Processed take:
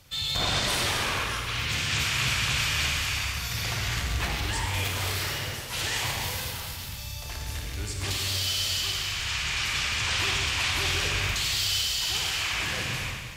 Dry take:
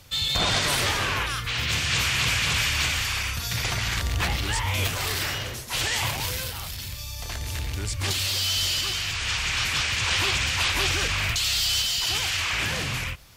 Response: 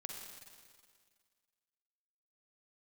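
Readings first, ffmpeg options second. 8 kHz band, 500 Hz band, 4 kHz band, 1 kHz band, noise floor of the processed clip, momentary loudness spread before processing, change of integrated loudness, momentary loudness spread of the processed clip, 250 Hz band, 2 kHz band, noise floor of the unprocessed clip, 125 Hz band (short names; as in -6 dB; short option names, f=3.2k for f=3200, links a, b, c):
-2.5 dB, -2.5 dB, -2.5 dB, -2.5 dB, -37 dBFS, 9 LU, -2.5 dB, 8 LU, -2.5 dB, -2.5 dB, -35 dBFS, -2.5 dB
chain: -filter_complex "[1:a]atrim=start_sample=2205[a];[0:a][a]afir=irnorm=-1:irlink=0"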